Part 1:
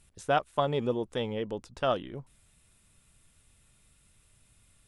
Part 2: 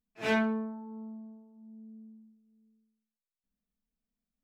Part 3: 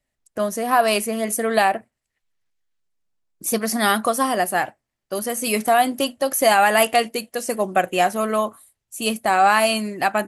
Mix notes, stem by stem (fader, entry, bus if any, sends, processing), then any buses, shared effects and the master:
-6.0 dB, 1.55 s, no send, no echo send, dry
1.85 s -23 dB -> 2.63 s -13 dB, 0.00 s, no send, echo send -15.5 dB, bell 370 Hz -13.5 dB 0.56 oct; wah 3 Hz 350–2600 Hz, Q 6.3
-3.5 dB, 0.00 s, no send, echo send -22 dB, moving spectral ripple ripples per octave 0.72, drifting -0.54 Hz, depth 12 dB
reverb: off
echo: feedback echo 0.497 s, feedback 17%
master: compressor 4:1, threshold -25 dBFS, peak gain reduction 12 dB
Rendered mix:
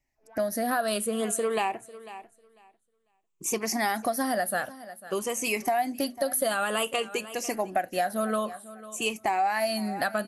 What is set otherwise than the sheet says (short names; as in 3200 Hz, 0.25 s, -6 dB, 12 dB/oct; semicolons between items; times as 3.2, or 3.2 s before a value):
stem 1: muted; stem 2 -23.0 dB -> -12.5 dB